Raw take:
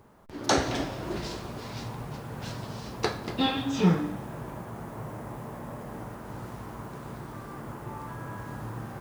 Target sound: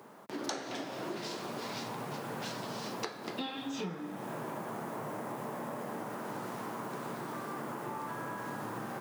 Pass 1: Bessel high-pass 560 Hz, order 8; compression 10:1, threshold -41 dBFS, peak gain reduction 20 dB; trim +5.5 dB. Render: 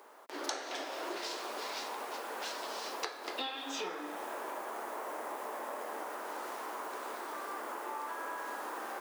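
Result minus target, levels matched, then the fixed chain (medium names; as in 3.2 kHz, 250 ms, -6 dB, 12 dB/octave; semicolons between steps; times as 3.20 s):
250 Hz band -8.0 dB
Bessel high-pass 240 Hz, order 8; compression 10:1, threshold -41 dBFS, peak gain reduction 21 dB; trim +5.5 dB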